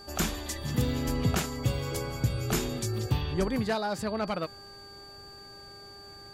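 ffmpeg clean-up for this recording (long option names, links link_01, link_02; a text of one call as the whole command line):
ffmpeg -i in.wav -af "bandreject=frequency=399.7:width_type=h:width=4,bandreject=frequency=799.4:width_type=h:width=4,bandreject=frequency=1199.1:width_type=h:width=4,bandreject=frequency=1598.8:width_type=h:width=4,bandreject=frequency=4600:width=30" out.wav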